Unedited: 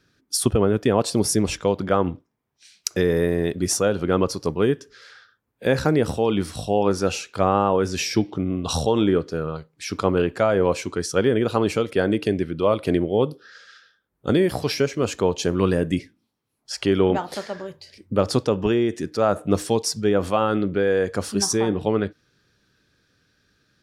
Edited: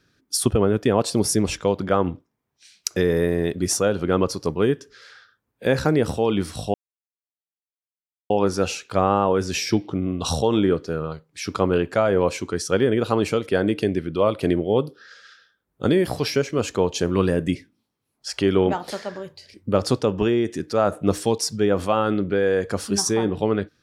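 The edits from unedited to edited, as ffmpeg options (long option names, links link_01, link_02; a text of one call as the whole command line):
ffmpeg -i in.wav -filter_complex "[0:a]asplit=2[link_01][link_02];[link_01]atrim=end=6.74,asetpts=PTS-STARTPTS,afade=type=out:start_time=6.736:duration=0.004:curve=hsin,apad=pad_dur=1.56[link_03];[link_02]atrim=start=6.74,asetpts=PTS-STARTPTS,afade=type=in:duration=0.004:curve=hsin[link_04];[link_03][link_04]concat=n=2:v=0:a=1" out.wav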